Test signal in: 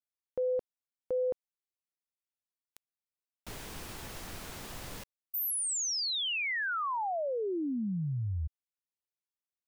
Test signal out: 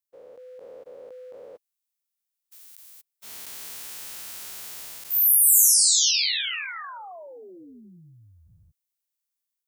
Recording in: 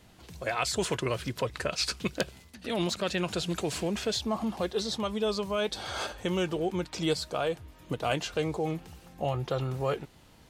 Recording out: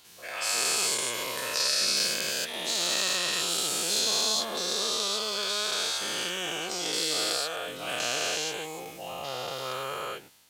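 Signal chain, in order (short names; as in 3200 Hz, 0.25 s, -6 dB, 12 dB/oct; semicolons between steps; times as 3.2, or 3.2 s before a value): spectral dilation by 0.48 s; AGC gain up to 4 dB; tilt +4 dB/oct; gain -13 dB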